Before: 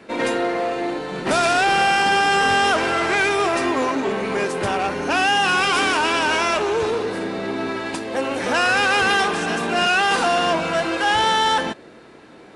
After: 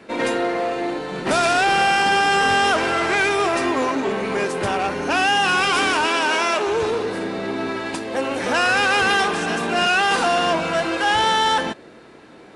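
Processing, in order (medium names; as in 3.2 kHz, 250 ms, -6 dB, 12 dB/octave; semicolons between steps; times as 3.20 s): 6.06–6.67 s: high-pass 220 Hz 12 dB/octave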